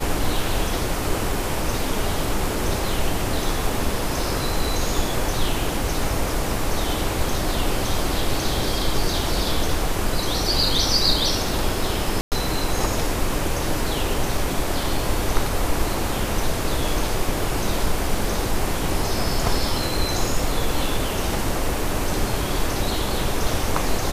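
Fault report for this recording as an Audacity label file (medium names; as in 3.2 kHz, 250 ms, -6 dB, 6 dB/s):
12.210000	12.320000	dropout 108 ms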